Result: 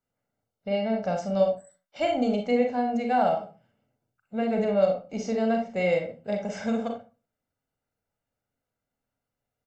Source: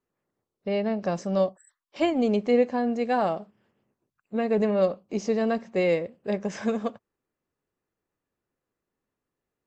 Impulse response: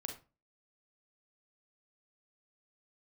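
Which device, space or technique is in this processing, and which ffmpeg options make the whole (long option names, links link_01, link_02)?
microphone above a desk: -filter_complex "[0:a]aecho=1:1:1.4:0.63[link_01];[1:a]atrim=start_sample=2205[link_02];[link_01][link_02]afir=irnorm=-1:irlink=0"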